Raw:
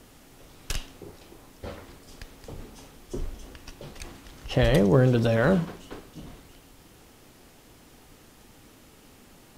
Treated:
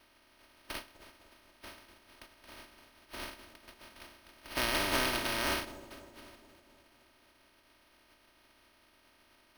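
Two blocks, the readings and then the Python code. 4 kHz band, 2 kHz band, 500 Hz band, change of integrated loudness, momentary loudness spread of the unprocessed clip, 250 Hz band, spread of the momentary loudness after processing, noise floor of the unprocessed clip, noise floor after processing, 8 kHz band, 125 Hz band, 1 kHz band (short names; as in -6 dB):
+1.5 dB, -1.5 dB, -15.5 dB, -9.5 dB, 24 LU, -16.0 dB, 23 LU, -54 dBFS, -66 dBFS, +1.0 dB, -24.5 dB, -2.5 dB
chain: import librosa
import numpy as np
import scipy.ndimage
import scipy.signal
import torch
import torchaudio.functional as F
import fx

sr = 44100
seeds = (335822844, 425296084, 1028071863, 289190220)

p1 = fx.spec_flatten(x, sr, power=0.1)
p2 = p1 + fx.echo_wet_lowpass(p1, sr, ms=249, feedback_pct=60, hz=740.0, wet_db=-13.5, dry=0)
p3 = np.repeat(scipy.signal.resample_poly(p2, 1, 6), 6)[:len(p2)]
p4 = p3 + 0.64 * np.pad(p3, (int(3.2 * sr / 1000.0), 0))[:len(p3)]
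y = p4 * librosa.db_to_amplitude(-7.5)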